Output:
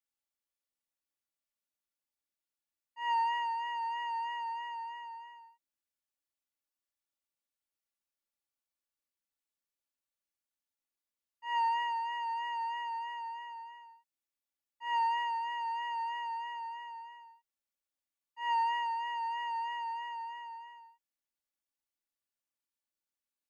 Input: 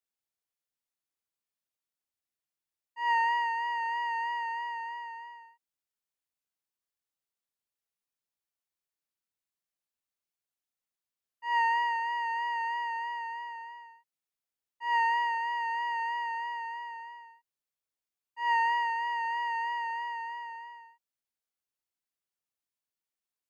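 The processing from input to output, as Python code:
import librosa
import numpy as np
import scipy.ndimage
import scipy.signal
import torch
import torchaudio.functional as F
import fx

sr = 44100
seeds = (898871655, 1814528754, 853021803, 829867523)

y = x + 0.85 * np.pad(x, (int(3.5 * sr / 1000.0), 0))[:len(x)]
y = y * 10.0 ** (-5.5 / 20.0)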